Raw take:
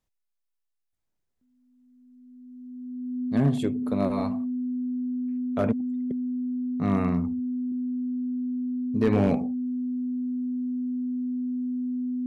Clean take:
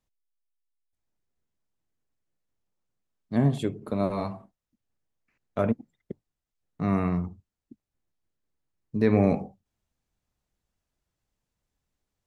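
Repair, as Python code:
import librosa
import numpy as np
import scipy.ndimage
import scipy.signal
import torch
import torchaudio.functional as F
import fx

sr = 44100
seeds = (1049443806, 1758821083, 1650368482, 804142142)

y = fx.fix_declip(x, sr, threshold_db=-14.5)
y = fx.notch(y, sr, hz=250.0, q=30.0)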